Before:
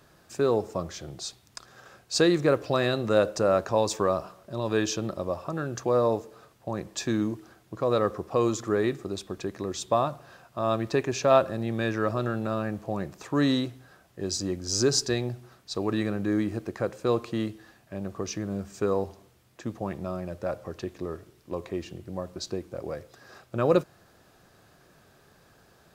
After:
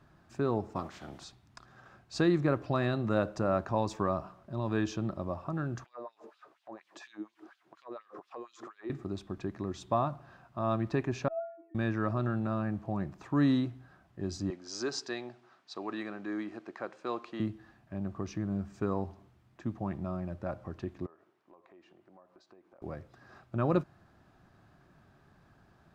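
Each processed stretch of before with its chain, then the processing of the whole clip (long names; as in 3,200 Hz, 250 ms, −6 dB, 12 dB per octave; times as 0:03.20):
0:00.75–0:01.23: ceiling on every frequency bin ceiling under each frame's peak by 18 dB + high-pass filter 120 Hz 6 dB per octave
0:05.84–0:08.90: high-shelf EQ 7,800 Hz −4 dB + downward compressor, threshold −36 dBFS + auto-filter high-pass sine 4.2 Hz 330–3,700 Hz
0:11.28–0:11.75: three sine waves on the formant tracks + stiff-string resonator 330 Hz, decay 0.56 s, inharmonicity 0.008
0:14.50–0:17.40: band-pass filter 350–6,200 Hz + spectral tilt +1.5 dB per octave
0:21.06–0:22.82: high-pass filter 560 Hz + high-shelf EQ 2,600 Hz −11 dB + downward compressor 4 to 1, threshold −50 dBFS
whole clip: low-pass filter 1,000 Hz 6 dB per octave; parametric band 480 Hz −11.5 dB 0.61 octaves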